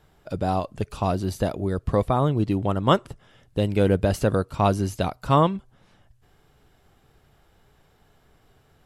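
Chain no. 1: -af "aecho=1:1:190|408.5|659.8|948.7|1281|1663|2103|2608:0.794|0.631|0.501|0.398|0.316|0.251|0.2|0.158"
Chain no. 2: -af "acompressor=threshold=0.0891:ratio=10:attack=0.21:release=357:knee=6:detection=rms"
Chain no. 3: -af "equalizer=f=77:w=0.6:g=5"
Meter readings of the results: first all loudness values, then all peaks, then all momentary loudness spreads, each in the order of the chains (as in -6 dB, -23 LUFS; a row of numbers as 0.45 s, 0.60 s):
-20.5 LUFS, -33.0 LUFS, -22.0 LUFS; -2.5 dBFS, -19.0 dBFS, -3.0 dBFS; 15 LU, 7 LU, 8 LU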